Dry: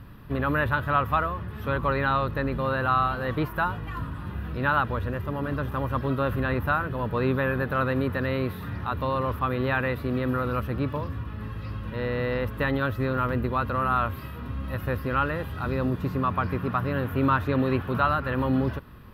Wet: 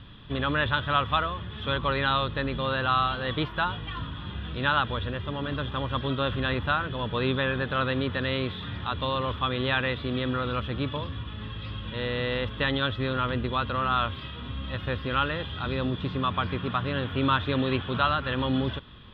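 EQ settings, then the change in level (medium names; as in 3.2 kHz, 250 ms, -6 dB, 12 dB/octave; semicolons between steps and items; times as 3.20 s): resonant low-pass 3.4 kHz, resonance Q 12; -2.5 dB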